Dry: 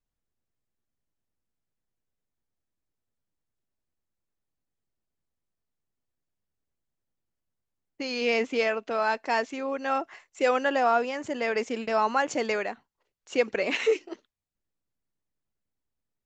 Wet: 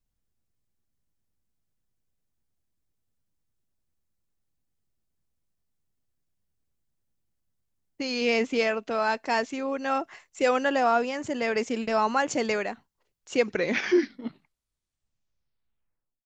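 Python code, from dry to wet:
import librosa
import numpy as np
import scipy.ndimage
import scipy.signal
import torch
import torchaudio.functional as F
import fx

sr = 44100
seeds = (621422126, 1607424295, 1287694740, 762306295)

y = fx.tape_stop_end(x, sr, length_s=2.88)
y = fx.bass_treble(y, sr, bass_db=7, treble_db=4)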